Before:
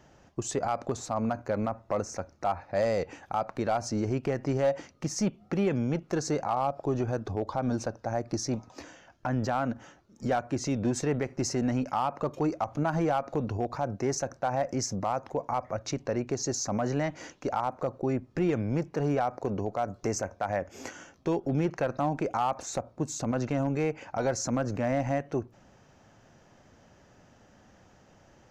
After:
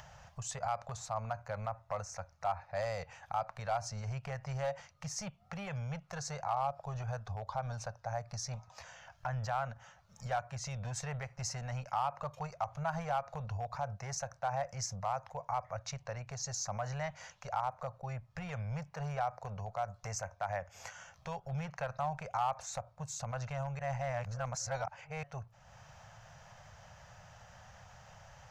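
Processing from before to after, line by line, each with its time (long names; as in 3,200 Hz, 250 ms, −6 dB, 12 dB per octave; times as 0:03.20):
0:23.79–0:25.23: reverse
whole clip: Chebyshev band-stop filter 130–720 Hz, order 2; upward compression, threshold −40 dBFS; level −4.5 dB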